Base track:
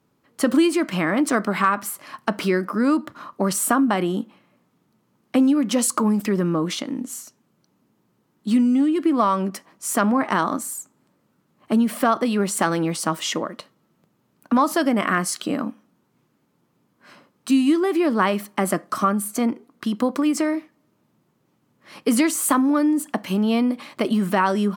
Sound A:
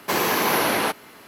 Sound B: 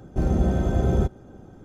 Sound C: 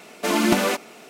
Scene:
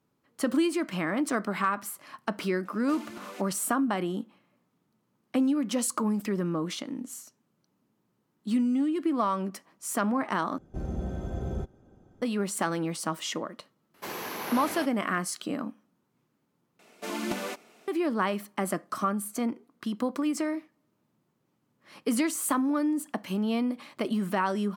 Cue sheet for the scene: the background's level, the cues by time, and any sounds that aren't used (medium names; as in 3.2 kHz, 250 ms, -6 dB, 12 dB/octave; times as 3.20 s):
base track -8 dB
2.65 s: add C -16.5 dB + compression 4:1, threshold -24 dBFS
10.58 s: replace with B -12 dB
13.94 s: add A -15 dB
16.79 s: replace with C -13 dB